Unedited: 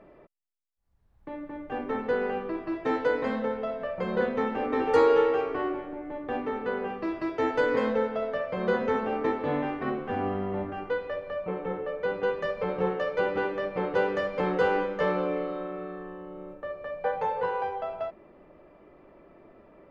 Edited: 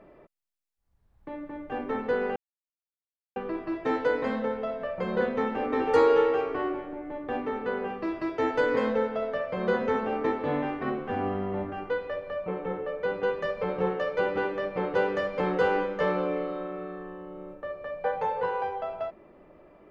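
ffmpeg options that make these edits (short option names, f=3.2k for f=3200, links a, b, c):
-filter_complex "[0:a]asplit=2[a][b];[a]atrim=end=2.36,asetpts=PTS-STARTPTS,afade=t=out:st=2.356:d=0.004:c=hsin,apad=pad_dur=1[c];[b]atrim=start=2.36,asetpts=PTS-STARTPTS,afade=t=in:d=0.004:c=hsin[d];[c][d]concat=n=2:v=0:a=1"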